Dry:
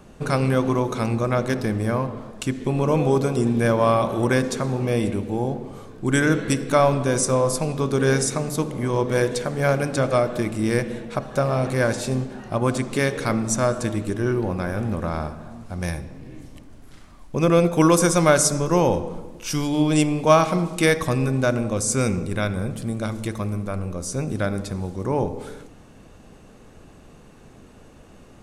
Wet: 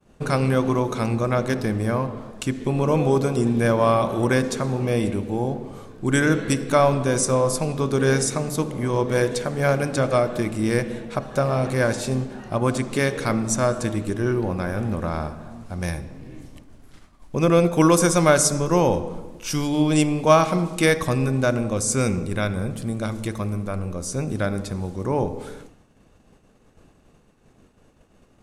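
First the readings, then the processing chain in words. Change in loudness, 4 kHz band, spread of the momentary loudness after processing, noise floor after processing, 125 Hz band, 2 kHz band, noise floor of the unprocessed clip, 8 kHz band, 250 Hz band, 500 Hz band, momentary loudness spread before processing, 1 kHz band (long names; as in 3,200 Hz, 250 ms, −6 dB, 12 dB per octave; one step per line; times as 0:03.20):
0.0 dB, 0.0 dB, 11 LU, −56 dBFS, 0.0 dB, 0.0 dB, −47 dBFS, 0.0 dB, 0.0 dB, 0.0 dB, 11 LU, 0.0 dB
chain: downward expander −39 dBFS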